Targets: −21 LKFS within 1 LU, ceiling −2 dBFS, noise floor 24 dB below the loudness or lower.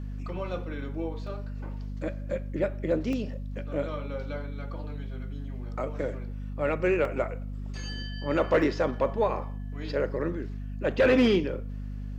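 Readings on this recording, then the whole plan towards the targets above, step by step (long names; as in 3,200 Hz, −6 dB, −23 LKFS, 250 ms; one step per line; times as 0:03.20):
number of dropouts 4; longest dropout 1.5 ms; mains hum 50 Hz; hum harmonics up to 250 Hz; level of the hum −33 dBFS; integrated loudness −30.0 LKFS; sample peak −13.5 dBFS; target loudness −21.0 LKFS
→ repair the gap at 0:01.27/0:03.13/0:07.05/0:08.62, 1.5 ms
mains-hum notches 50/100/150/200/250 Hz
level +9 dB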